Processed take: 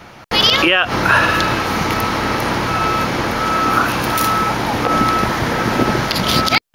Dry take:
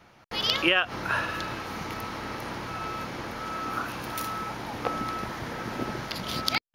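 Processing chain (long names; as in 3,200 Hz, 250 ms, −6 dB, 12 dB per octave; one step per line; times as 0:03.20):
boost into a limiter +18 dB
level −1 dB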